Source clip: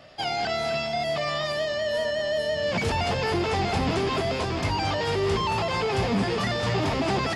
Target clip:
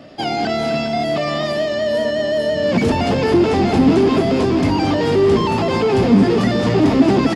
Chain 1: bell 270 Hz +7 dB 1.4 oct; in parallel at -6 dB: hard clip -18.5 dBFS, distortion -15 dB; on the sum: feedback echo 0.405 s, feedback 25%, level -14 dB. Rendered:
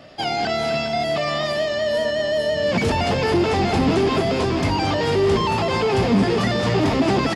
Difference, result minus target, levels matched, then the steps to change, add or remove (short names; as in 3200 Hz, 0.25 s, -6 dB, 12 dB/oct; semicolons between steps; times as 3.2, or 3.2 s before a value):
250 Hz band -3.0 dB
change: bell 270 Hz +16.5 dB 1.4 oct